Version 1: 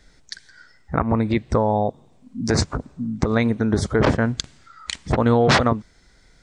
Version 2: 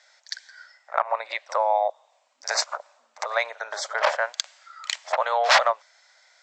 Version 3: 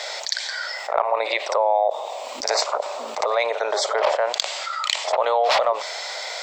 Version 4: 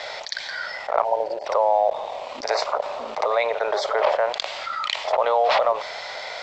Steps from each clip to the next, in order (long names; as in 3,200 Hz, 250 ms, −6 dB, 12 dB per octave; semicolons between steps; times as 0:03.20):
Chebyshev band-pass filter 580–7,600 Hz, order 5; in parallel at −10.5 dB: soft clipping −16.5 dBFS, distortion −13 dB; on the sum: backwards echo 57 ms −20 dB
graphic EQ with 15 bands 400 Hz +10 dB, 1,600 Hz −11 dB, 6,300 Hz −7 dB; envelope flattener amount 70%; level −1 dB
time-frequency box erased 0:01.04–0:01.46, 1,000–4,300 Hz; in parallel at −10.5 dB: bit reduction 5 bits; on the sum: high-frequency loss of the air 170 metres; level −1.5 dB